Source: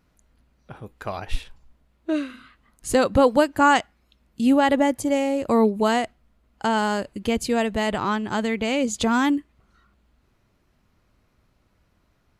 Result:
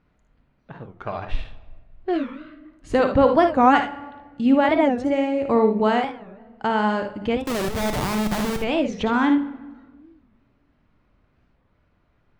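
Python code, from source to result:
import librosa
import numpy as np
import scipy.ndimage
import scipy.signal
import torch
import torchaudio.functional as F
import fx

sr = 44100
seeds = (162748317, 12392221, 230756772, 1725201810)

p1 = scipy.signal.sosfilt(scipy.signal.butter(2, 2800.0, 'lowpass', fs=sr, output='sos'), x)
p2 = fx.schmitt(p1, sr, flips_db=-27.5, at=(7.42, 8.6))
p3 = p2 + fx.room_early_taps(p2, sr, ms=(56, 76), db=(-8.5, -11.0), dry=0)
p4 = fx.room_shoebox(p3, sr, seeds[0], volume_m3=1100.0, walls='mixed', distance_m=0.41)
y = fx.record_warp(p4, sr, rpm=45.0, depth_cents=250.0)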